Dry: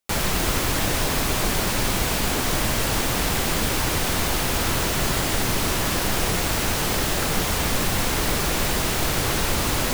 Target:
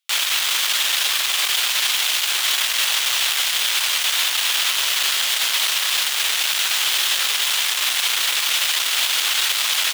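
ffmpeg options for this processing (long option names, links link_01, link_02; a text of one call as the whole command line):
ffmpeg -i in.wav -filter_complex "[0:a]equalizer=frequency=3300:width=1.5:gain=12,aeval=exprs='0.501*(cos(1*acos(clip(val(0)/0.501,-1,1)))-cos(1*PI/2))+0.0891*(cos(8*acos(clip(val(0)/0.501,-1,1)))-cos(8*PI/2))':channel_layout=same,highpass=1300,asplit=2[link_01][link_02];[link_02]adelay=190,highpass=300,lowpass=3400,asoftclip=type=hard:threshold=-30dB,volume=-12dB[link_03];[link_01][link_03]amix=inputs=2:normalize=0" out.wav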